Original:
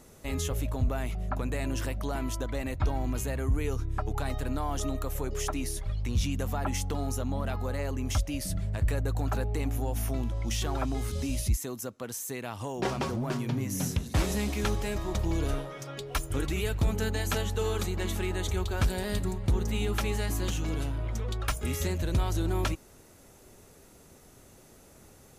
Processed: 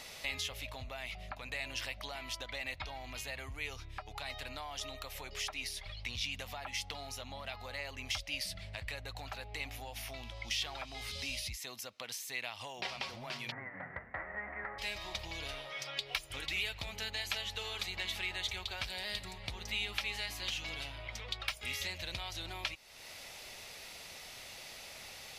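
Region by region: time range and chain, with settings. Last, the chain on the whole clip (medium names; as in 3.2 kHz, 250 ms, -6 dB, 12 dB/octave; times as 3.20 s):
13.50–14.78 s: formants flattened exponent 0.6 + rippled Chebyshev low-pass 2 kHz, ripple 3 dB + hum notches 50/100/150/200/250/300/350/400/450 Hz
whole clip: resonant low shelf 490 Hz -9.5 dB, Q 1.5; compression 3:1, threshold -52 dBFS; high-order bell 3.2 kHz +13.5 dB; trim +4 dB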